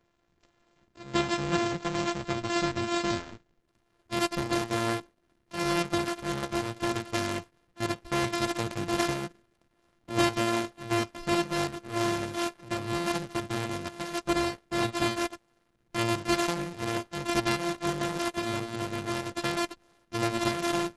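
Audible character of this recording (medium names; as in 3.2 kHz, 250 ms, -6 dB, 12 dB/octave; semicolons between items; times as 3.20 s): a buzz of ramps at a fixed pitch in blocks of 128 samples; Opus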